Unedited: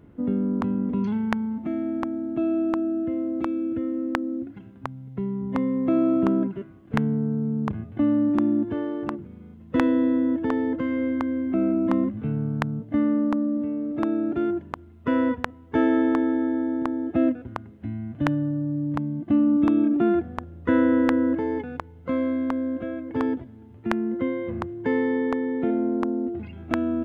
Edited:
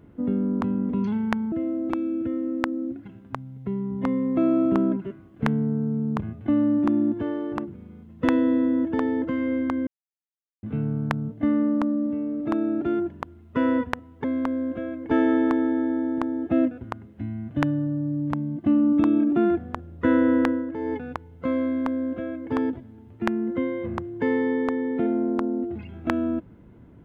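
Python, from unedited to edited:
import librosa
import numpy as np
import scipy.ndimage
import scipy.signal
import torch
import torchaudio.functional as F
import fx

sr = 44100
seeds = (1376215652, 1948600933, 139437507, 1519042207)

y = fx.edit(x, sr, fx.cut(start_s=1.52, length_s=1.51),
    fx.silence(start_s=11.38, length_s=0.76),
    fx.fade_down_up(start_s=21.06, length_s=0.51, db=-9.0, fade_s=0.24),
    fx.duplicate(start_s=22.29, length_s=0.87, to_s=15.75), tone=tone)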